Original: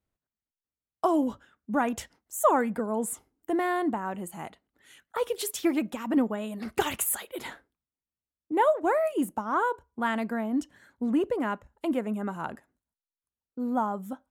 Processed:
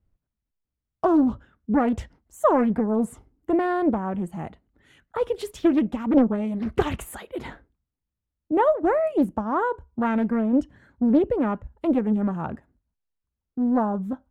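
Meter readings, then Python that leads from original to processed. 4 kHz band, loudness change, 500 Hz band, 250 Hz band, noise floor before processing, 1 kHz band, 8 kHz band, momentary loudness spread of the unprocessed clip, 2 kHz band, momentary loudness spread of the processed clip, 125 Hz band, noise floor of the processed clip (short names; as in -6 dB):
-4.0 dB, +5.0 dB, +4.5 dB, +7.5 dB, under -85 dBFS, +1.5 dB, -12.0 dB, 13 LU, -1.0 dB, 15 LU, +10.5 dB, under -85 dBFS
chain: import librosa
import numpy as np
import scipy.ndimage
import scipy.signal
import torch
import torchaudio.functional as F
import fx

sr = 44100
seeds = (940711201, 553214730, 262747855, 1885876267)

y = fx.riaa(x, sr, side='playback')
y = fx.doppler_dist(y, sr, depth_ms=0.58)
y = F.gain(torch.from_numpy(y), 1.5).numpy()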